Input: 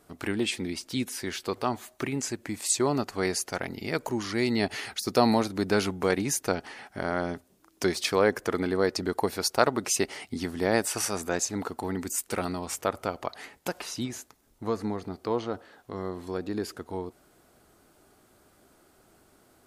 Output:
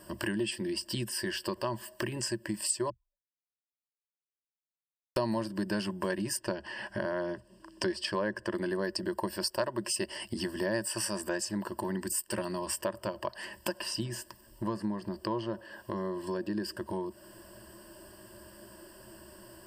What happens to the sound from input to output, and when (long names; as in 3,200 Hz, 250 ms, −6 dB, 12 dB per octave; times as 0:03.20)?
0:02.90–0:05.16: silence
0:06.37–0:08.54: high-frequency loss of the air 61 metres
whole clip: EQ curve with evenly spaced ripples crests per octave 1.3, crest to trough 17 dB; downward compressor 3 to 1, threshold −40 dBFS; level +5.5 dB